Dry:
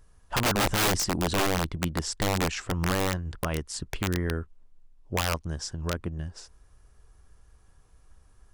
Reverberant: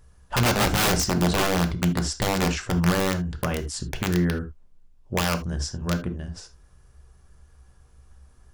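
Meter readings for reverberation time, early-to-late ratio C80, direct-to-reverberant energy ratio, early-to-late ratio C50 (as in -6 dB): no single decay rate, 22.0 dB, 6.0 dB, 13.5 dB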